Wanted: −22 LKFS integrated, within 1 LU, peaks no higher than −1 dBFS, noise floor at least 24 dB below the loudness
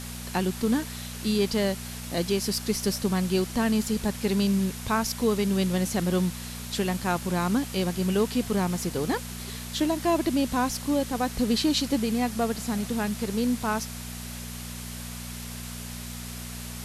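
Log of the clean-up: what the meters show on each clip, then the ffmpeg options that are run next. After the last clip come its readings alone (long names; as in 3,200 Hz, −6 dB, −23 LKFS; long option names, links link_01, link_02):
mains hum 60 Hz; hum harmonics up to 240 Hz; level of the hum −37 dBFS; background noise floor −38 dBFS; target noise floor −52 dBFS; integrated loudness −27.5 LKFS; sample peak −12.5 dBFS; target loudness −22.0 LKFS
→ -af "bandreject=frequency=60:width_type=h:width=4,bandreject=frequency=120:width_type=h:width=4,bandreject=frequency=180:width_type=h:width=4,bandreject=frequency=240:width_type=h:width=4"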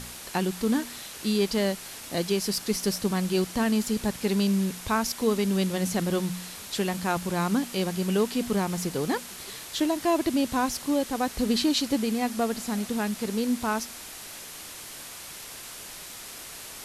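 mains hum none found; background noise floor −42 dBFS; target noise floor −52 dBFS
→ -af "afftdn=noise_reduction=10:noise_floor=-42"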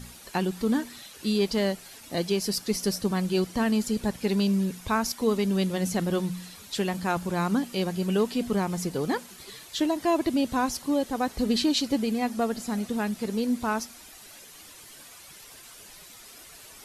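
background noise floor −48 dBFS; target noise floor −52 dBFS
→ -af "afftdn=noise_reduction=6:noise_floor=-48"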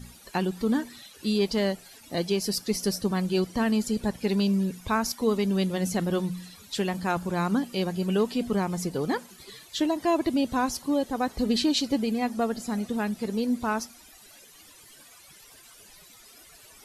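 background noise floor −52 dBFS; integrated loudness −27.5 LKFS; sample peak −13.0 dBFS; target loudness −22.0 LKFS
→ -af "volume=5.5dB"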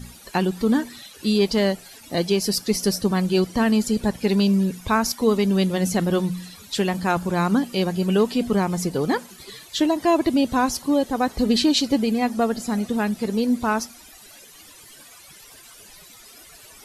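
integrated loudness −22.0 LKFS; sample peak −7.5 dBFS; background noise floor −47 dBFS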